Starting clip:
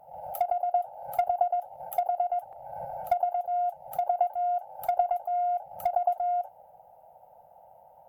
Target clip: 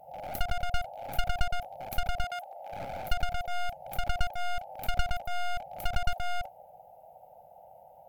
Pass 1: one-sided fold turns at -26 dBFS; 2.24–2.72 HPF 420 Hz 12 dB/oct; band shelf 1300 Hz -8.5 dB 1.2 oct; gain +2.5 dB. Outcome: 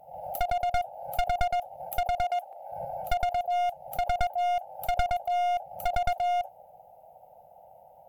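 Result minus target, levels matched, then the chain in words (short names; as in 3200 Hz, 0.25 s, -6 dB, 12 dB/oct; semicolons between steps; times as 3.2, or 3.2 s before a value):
one-sided fold: distortion -15 dB
one-sided fold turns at -37.5 dBFS; 2.24–2.72 HPF 420 Hz 12 dB/oct; band shelf 1300 Hz -8.5 dB 1.2 oct; gain +2.5 dB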